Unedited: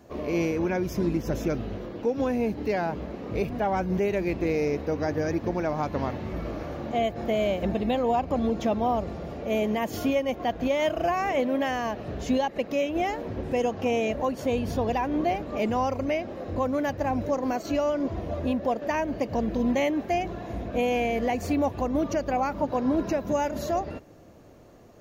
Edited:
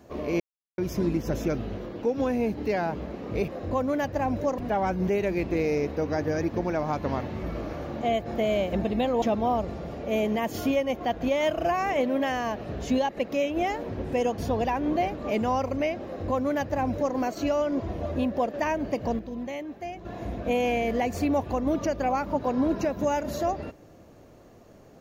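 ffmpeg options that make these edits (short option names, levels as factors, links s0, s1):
-filter_complex "[0:a]asplit=9[s0][s1][s2][s3][s4][s5][s6][s7][s8];[s0]atrim=end=0.4,asetpts=PTS-STARTPTS,afade=t=out:st=0.396:d=0.004:c=hsin[s9];[s1]atrim=start=0.4:end=0.78,asetpts=PTS-STARTPTS,volume=0[s10];[s2]atrim=start=0.78:end=3.482,asetpts=PTS-STARTPTS,afade=t=in:d=0.004:c=hsin[s11];[s3]atrim=start=16.328:end=17.432[s12];[s4]atrim=start=3.478:end=8.122[s13];[s5]atrim=start=8.608:end=13.772[s14];[s6]atrim=start=14.658:end=19.47,asetpts=PTS-STARTPTS,afade=t=out:st=4.462:d=0.35:c=log:silence=0.316228[s15];[s7]atrim=start=19.47:end=20.33,asetpts=PTS-STARTPTS,volume=0.316[s16];[s8]atrim=start=20.33,asetpts=PTS-STARTPTS,afade=t=in:d=0.35:c=log:silence=0.316228[s17];[s9][s10][s11]concat=n=3:v=0:a=1[s18];[s18][s12]acrossfade=d=0.004:c1=hsin:c2=hsin[s19];[s19][s13]acrossfade=d=0.004:c1=hsin:c2=hsin[s20];[s20][s14]acrossfade=d=0.004:c1=hsin:c2=hsin[s21];[s15][s16][s17]concat=n=3:v=0:a=1[s22];[s21][s22]acrossfade=d=0.004:c1=hsin:c2=hsin"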